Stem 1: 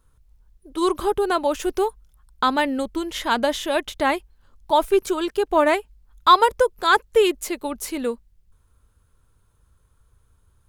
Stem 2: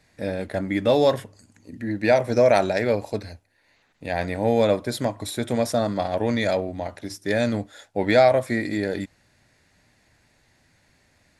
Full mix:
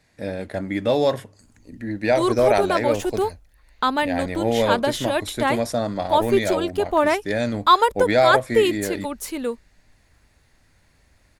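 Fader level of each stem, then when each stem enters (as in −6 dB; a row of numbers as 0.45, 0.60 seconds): −1.0, −1.0 decibels; 1.40, 0.00 seconds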